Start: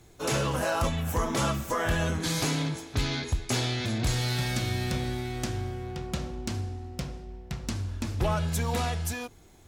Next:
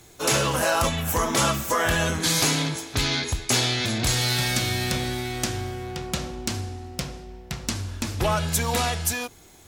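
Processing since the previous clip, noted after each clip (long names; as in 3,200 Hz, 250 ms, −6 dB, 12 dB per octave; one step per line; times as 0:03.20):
spectral tilt +1.5 dB per octave
level +6 dB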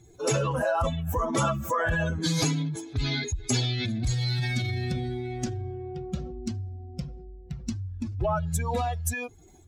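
expanding power law on the bin magnitudes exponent 2.1
level −3 dB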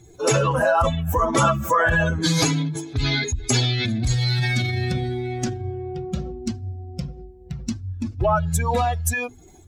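mains-hum notches 50/100/150/200/250 Hz
dynamic equaliser 1,400 Hz, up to +3 dB, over −41 dBFS, Q 0.81
level +6 dB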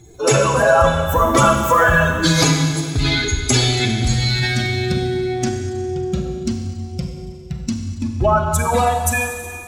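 four-comb reverb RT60 2.1 s, combs from 31 ms, DRR 3.5 dB
level +4 dB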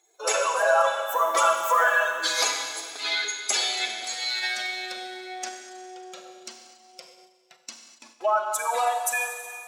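high-pass filter 570 Hz 24 dB per octave
noise gate −46 dBFS, range −6 dB
level −6 dB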